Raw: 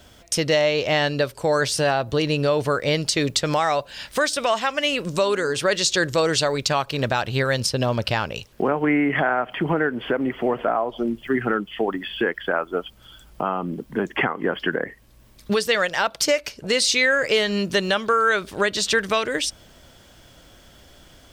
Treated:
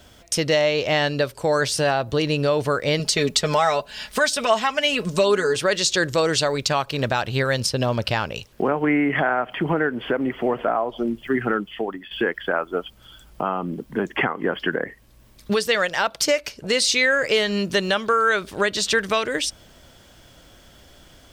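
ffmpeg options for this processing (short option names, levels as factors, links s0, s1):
-filter_complex "[0:a]asettb=1/sr,asplit=3[s0][s1][s2];[s0]atrim=end=2.994[s3];[s1]atrim=start=2.99:end=5.56,asetpts=PTS-STARTPTS,afade=t=in:d=0.004:c=qsin,afade=t=out:st=2.566:d=0.004:c=qsin,aecho=1:1:4.7:0.65,atrim=end_sample=113337[s4];[s2]atrim=start=5.556[s5];[s3][s4]acrossfade=d=0.004:c1=hsin:c2=qsin[s6];[s6][s5]acrossfade=d=0.004:c1=qsin:c2=hsin,asplit=2[s7][s8];[s7]atrim=end=12.11,asetpts=PTS-STARTPTS,afade=t=out:st=11.62:d=0.49:silence=0.266073[s9];[s8]atrim=start=12.11,asetpts=PTS-STARTPTS,afade=t=in:d=0.004:c=hsin:silence=0.266073[s10];[s9][s10]concat=n=2:v=0:a=1"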